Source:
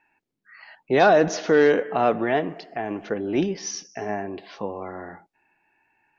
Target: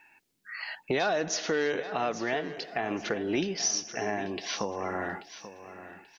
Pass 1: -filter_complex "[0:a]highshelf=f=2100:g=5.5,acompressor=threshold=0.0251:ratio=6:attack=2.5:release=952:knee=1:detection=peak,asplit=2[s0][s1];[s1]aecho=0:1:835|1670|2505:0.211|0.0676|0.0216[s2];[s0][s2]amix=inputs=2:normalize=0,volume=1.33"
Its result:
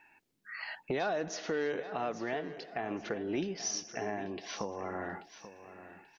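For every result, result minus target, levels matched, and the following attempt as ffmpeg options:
compression: peak gain reduction +4 dB; 4 kHz band -3.0 dB
-filter_complex "[0:a]highshelf=f=2100:g=5.5,acompressor=threshold=0.0531:ratio=6:attack=2.5:release=952:knee=1:detection=peak,asplit=2[s0][s1];[s1]aecho=0:1:835|1670|2505:0.211|0.0676|0.0216[s2];[s0][s2]amix=inputs=2:normalize=0,volume=1.33"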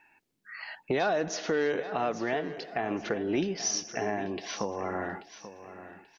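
4 kHz band -3.5 dB
-filter_complex "[0:a]highshelf=f=2100:g=13,acompressor=threshold=0.0531:ratio=6:attack=2.5:release=952:knee=1:detection=peak,asplit=2[s0][s1];[s1]aecho=0:1:835|1670|2505:0.211|0.0676|0.0216[s2];[s0][s2]amix=inputs=2:normalize=0,volume=1.33"

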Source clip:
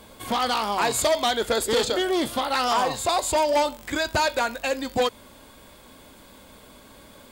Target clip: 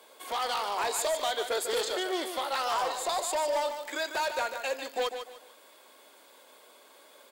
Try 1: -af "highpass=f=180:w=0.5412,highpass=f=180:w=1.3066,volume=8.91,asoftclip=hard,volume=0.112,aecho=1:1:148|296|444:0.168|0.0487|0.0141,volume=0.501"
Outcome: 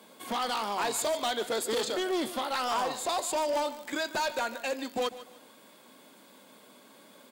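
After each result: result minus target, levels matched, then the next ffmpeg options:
250 Hz band +6.5 dB; echo-to-direct -7 dB
-af "highpass=f=380:w=0.5412,highpass=f=380:w=1.3066,volume=8.91,asoftclip=hard,volume=0.112,aecho=1:1:148|296|444:0.168|0.0487|0.0141,volume=0.501"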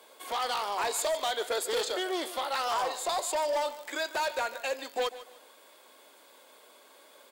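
echo-to-direct -7 dB
-af "highpass=f=380:w=0.5412,highpass=f=380:w=1.3066,volume=8.91,asoftclip=hard,volume=0.112,aecho=1:1:148|296|444:0.376|0.109|0.0316,volume=0.501"

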